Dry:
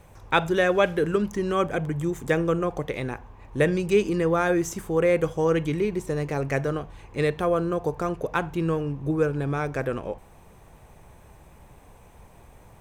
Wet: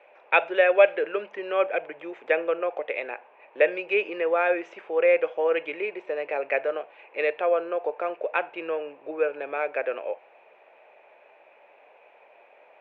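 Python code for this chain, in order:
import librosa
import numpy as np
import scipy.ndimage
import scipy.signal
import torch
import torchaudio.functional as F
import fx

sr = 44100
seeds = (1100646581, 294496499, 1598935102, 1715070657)

y = fx.cabinet(x, sr, low_hz=460.0, low_slope=24, high_hz=2800.0, hz=(600.0, 1100.0, 2500.0), db=(7, -6, 10))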